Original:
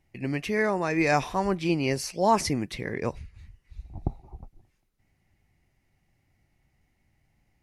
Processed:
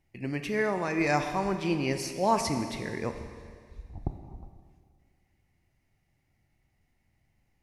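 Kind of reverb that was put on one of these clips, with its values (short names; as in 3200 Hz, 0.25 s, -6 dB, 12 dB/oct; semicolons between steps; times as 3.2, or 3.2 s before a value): Schroeder reverb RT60 2 s, combs from 27 ms, DRR 7.5 dB; gain -3.5 dB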